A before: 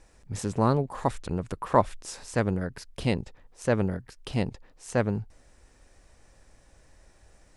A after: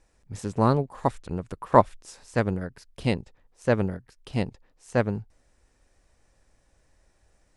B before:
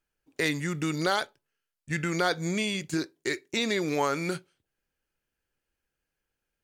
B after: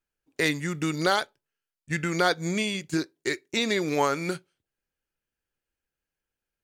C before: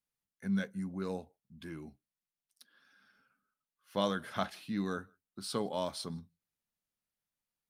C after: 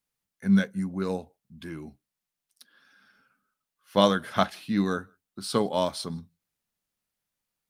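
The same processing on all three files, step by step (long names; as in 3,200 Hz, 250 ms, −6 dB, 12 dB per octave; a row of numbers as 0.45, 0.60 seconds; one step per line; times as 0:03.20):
expander for the loud parts 1.5 to 1, over −40 dBFS
loudness normalisation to −27 LKFS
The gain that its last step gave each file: +5.0, +3.5, +12.0 decibels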